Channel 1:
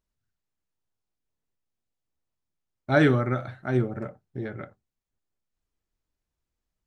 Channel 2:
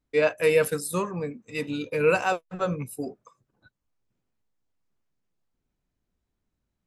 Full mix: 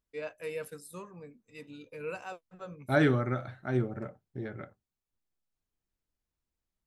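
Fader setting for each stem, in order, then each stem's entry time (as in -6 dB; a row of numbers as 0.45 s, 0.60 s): -5.0 dB, -17.0 dB; 0.00 s, 0.00 s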